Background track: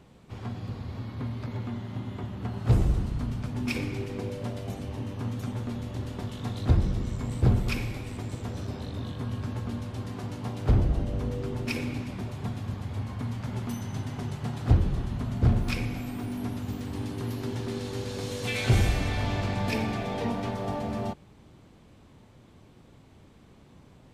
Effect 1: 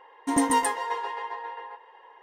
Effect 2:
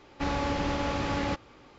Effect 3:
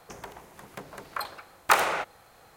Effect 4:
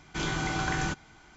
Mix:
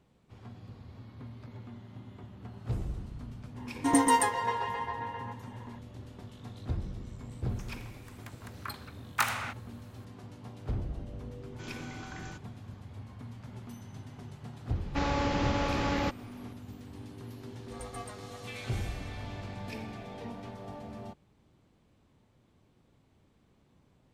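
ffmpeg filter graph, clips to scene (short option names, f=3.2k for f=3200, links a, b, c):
-filter_complex "[1:a]asplit=2[a][b];[0:a]volume=-12dB[c];[3:a]highpass=1.1k[d];[b]aeval=exprs='val(0)*sin(2*PI*220*n/s)':c=same[e];[a]atrim=end=2.22,asetpts=PTS-STARTPTS,volume=-1dB,afade=t=in:d=0.004:c=hsin,afade=t=out:st=2.216:d=0.004:c=hsin,adelay=157437S[f];[d]atrim=end=2.56,asetpts=PTS-STARTPTS,volume=-5.5dB,afade=t=in:d=0.004:c=hsin,afade=t=out:st=2.556:d=0.004:c=hsin,adelay=7490[g];[4:a]atrim=end=1.36,asetpts=PTS-STARTPTS,volume=-15dB,afade=t=in:d=0.004:c=hsin,afade=t=out:st=1.356:d=0.004:c=hsin,adelay=11440[h];[2:a]atrim=end=1.78,asetpts=PTS-STARTPTS,volume=-0.5dB,afade=t=in:d=0.004:c=hsin,afade=t=out:st=1.776:d=0.004:c=hsin,adelay=14750[i];[e]atrim=end=2.22,asetpts=PTS-STARTPTS,volume=-18dB,afade=t=in:d=0.004:c=hsin,afade=t=out:st=2.216:d=0.004:c=hsin,adelay=17430[j];[c][f][g][h][i][j]amix=inputs=6:normalize=0"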